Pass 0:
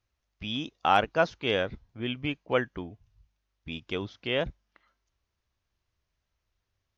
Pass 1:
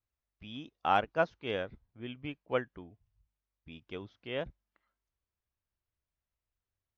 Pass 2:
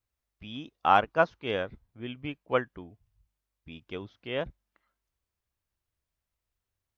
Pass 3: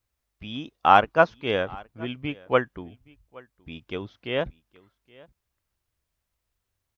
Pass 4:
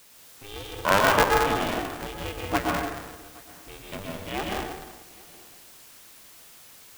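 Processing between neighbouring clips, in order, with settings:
high-shelf EQ 4,300 Hz −10.5 dB; expander for the loud parts 1.5 to 1, over −34 dBFS; level −3.5 dB
dynamic equaliser 1,100 Hz, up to +5 dB, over −44 dBFS, Q 2.2; level +4 dB
single-tap delay 821 ms −24 dB; level +5.5 dB
bit-depth reduction 8 bits, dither triangular; dense smooth reverb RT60 1.2 s, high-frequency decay 0.8×, pre-delay 105 ms, DRR −2 dB; ring modulator with a square carrier 200 Hz; level −5.5 dB

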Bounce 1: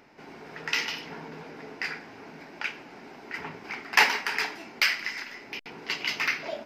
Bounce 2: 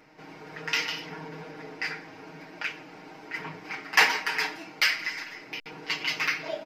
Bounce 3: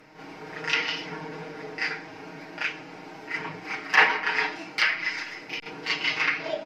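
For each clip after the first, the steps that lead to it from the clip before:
comb filter 6.4 ms, depth 98%; level −2.5 dB
backwards echo 35 ms −7.5 dB; treble cut that deepens with the level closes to 2,400 Hz, closed at −21.5 dBFS; level +3 dB

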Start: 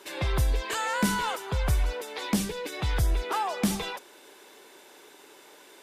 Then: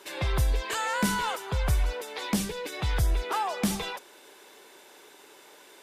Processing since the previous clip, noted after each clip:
parametric band 280 Hz −2.5 dB 0.96 octaves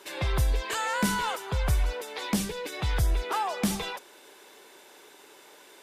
no processing that can be heard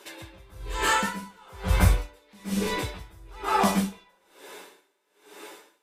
flanger 0.36 Hz, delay 8.8 ms, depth 2.7 ms, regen +51%
dense smooth reverb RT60 0.55 s, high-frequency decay 0.65×, pre-delay 110 ms, DRR −8.5 dB
tremolo with a sine in dB 1.1 Hz, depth 32 dB
level +4.5 dB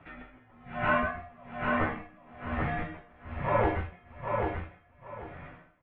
tuned comb filter 75 Hz, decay 0.17 s, harmonics all, mix 80%
on a send: repeating echo 790 ms, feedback 23%, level −4 dB
on the sum: single-sideband voice off tune −280 Hz 220–2,600 Hz
level +3 dB

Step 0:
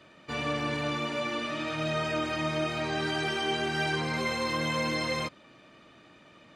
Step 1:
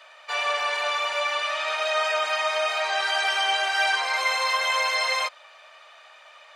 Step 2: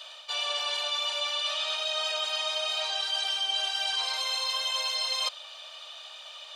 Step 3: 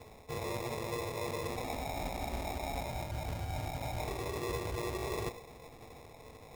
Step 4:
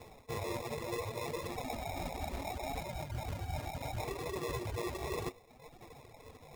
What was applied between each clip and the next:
Butterworth high-pass 620 Hz 36 dB per octave; level +8.5 dB
high shelf with overshoot 2,600 Hz +7.5 dB, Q 3; reversed playback; downward compressor 6 to 1, threshold −28 dBFS, peak gain reduction 15.5 dB; reversed playback
convolution reverb RT60 0.55 s, pre-delay 3 ms, DRR 3.5 dB; decimation without filtering 29×; level −8.5 dB
flanger 0.69 Hz, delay 5.1 ms, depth 8.6 ms, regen +63%; reverb reduction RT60 1 s; level +5 dB

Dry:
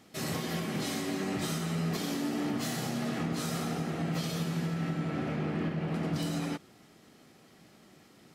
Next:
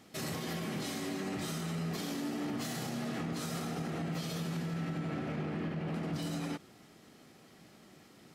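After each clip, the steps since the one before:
brickwall limiter −29 dBFS, peak gain reduction 6 dB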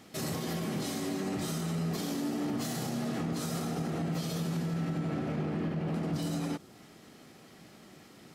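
dynamic equaliser 2,200 Hz, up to −5 dB, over −58 dBFS, Q 0.72
level +4 dB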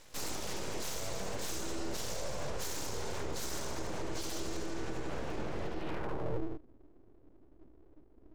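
low-pass filter sweep 6,900 Hz → 150 Hz, 0:05.72–0:06.45
full-wave rectification
level −2 dB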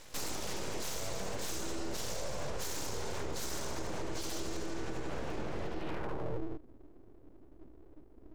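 downward compressor 2 to 1, threshold −39 dBFS, peak gain reduction 6.5 dB
level +4 dB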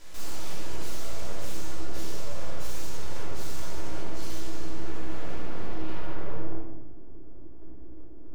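soft clipping −34.5 dBFS, distortion −13 dB
rectangular room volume 540 cubic metres, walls mixed, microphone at 3 metres
level −2.5 dB

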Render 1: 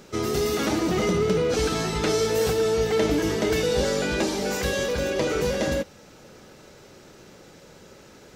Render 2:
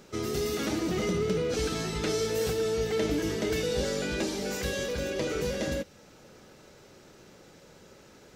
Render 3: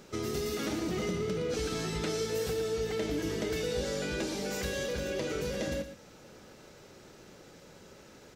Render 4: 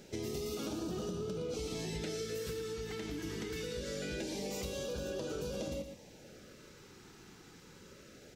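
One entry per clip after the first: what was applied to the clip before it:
dynamic equaliser 910 Hz, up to −5 dB, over −39 dBFS, Q 1.2; level −5 dB
downward compressor 2 to 1, threshold −33 dBFS, peak gain reduction 5.5 dB; on a send: single-tap delay 116 ms −11 dB
downward compressor, threshold −34 dBFS, peak gain reduction 6.5 dB; auto-filter notch sine 0.24 Hz 560–2,100 Hz; level −1 dB

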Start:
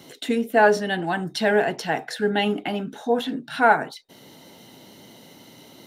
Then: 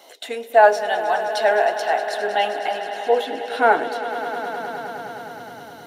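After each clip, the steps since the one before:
high-pass filter sweep 660 Hz → 91 Hz, 0:02.85–0:05.55
echo that builds up and dies away 104 ms, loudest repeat 5, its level −15 dB
level −1 dB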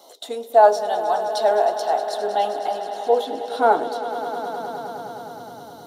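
flat-topped bell 2,100 Hz −13.5 dB 1.1 octaves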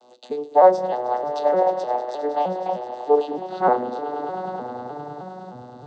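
vocoder with an arpeggio as carrier minor triad, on B2, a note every 306 ms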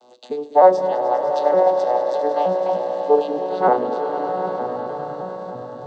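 echo that builds up and dies away 99 ms, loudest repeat 5, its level −16 dB
level +1.5 dB

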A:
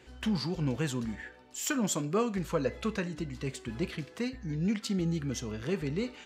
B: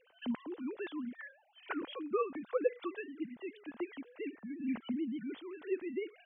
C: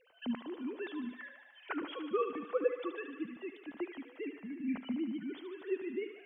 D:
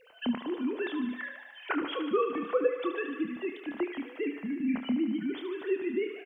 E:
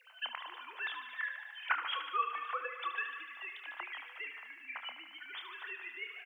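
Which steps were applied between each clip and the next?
three sine waves on the formant tracks; level −6.5 dB
feedback echo with a high-pass in the loop 74 ms, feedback 79%, high-pass 410 Hz, level −9 dB
double-tracking delay 28 ms −10 dB; downward compressor 1.5 to 1, threshold −39 dBFS, peak gain reduction 5.5 dB; level +9 dB
high-pass filter 930 Hz 24 dB per octave; level +1.5 dB

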